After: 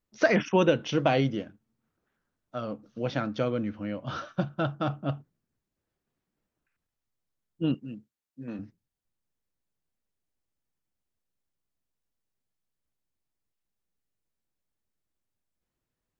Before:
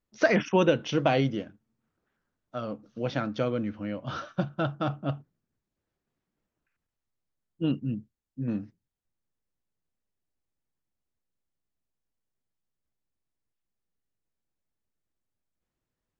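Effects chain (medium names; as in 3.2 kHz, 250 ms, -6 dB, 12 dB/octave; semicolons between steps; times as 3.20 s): 7.74–8.59 s: high-pass 510 Hz 6 dB/octave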